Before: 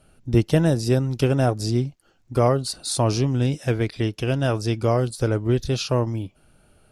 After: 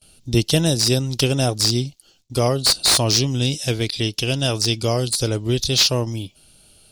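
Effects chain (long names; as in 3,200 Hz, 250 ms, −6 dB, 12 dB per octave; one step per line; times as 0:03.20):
noise gate with hold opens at −51 dBFS
high shelf with overshoot 2,500 Hz +14 dB, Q 1.5
slew-rate limiting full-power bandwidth 1,300 Hz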